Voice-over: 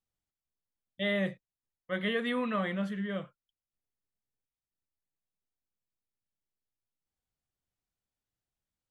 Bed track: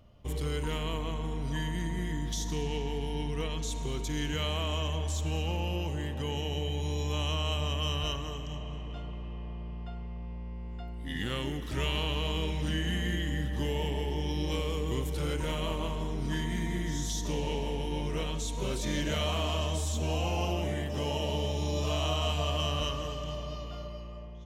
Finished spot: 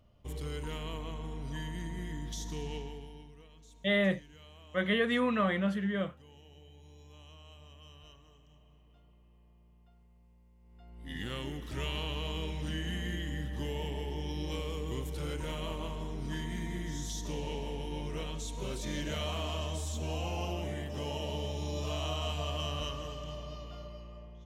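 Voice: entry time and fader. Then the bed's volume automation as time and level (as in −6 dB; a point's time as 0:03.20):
2.85 s, +2.5 dB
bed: 0:02.76 −6 dB
0:03.43 −23 dB
0:10.58 −23 dB
0:11.12 −5 dB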